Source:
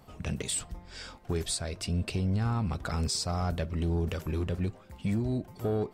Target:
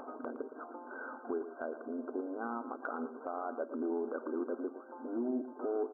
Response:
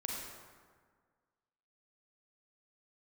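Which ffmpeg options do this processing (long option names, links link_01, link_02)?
-filter_complex "[0:a]afftfilt=real='re*between(b*sr/4096,230,1600)':imag='im*between(b*sr/4096,230,1600)':win_size=4096:overlap=0.75,alimiter=level_in=4dB:limit=-24dB:level=0:latency=1:release=213,volume=-4dB,acompressor=mode=upward:threshold=-38dB:ratio=2.5,asplit=2[link_01][link_02];[link_02]aecho=0:1:114:0.266[link_03];[link_01][link_03]amix=inputs=2:normalize=0,volume=1dB"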